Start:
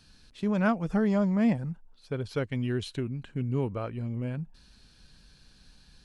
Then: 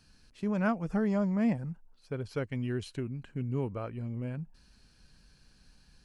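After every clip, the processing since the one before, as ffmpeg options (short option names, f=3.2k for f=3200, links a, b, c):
-af "equalizer=f=3.6k:w=4.1:g=-8,volume=-3.5dB"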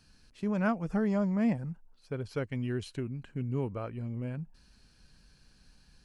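-af anull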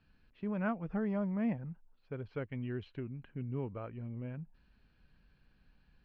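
-af "lowpass=f=3.1k:w=0.5412,lowpass=f=3.1k:w=1.3066,volume=-5.5dB"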